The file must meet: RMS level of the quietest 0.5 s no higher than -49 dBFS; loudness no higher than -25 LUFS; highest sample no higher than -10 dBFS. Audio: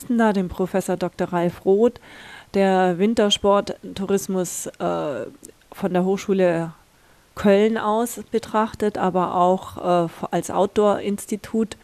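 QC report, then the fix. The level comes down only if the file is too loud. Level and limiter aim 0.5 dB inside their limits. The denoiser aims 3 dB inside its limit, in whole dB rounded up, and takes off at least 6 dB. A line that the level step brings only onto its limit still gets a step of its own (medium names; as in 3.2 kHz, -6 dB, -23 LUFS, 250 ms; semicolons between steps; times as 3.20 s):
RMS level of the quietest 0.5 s -55 dBFS: pass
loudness -21.5 LUFS: fail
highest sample -4.5 dBFS: fail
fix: trim -4 dB; peak limiter -10.5 dBFS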